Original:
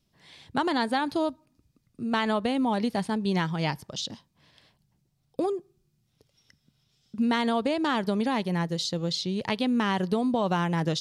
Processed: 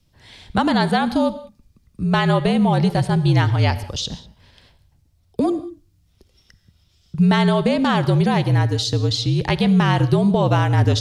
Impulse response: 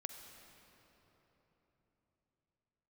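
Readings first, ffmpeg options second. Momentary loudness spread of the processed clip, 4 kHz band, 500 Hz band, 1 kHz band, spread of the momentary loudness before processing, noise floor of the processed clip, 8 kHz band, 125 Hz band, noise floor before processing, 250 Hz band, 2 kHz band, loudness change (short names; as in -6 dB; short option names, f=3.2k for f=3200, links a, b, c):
10 LU, +7.0 dB, +7.5 dB, +7.0 dB, 8 LU, -61 dBFS, +7.0 dB, +16.5 dB, -73 dBFS, +8.0 dB, +7.0 dB, +9.0 dB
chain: -filter_complex "[0:a]afreqshift=-54,asplit=2[a][b];[1:a]atrim=start_sample=2205,afade=t=out:st=0.25:d=0.01,atrim=end_sample=11466,lowshelf=f=190:g=10.5[c];[b][c]afir=irnorm=-1:irlink=0,volume=5.5dB[d];[a][d]amix=inputs=2:normalize=0"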